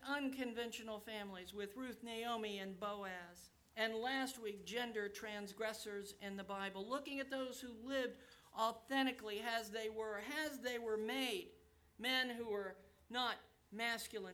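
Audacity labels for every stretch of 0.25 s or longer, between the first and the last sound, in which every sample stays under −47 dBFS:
3.300000	3.770000	silence
8.120000	8.560000	silence
11.430000	12.000000	silence
12.720000	13.110000	silence
13.350000	13.740000	silence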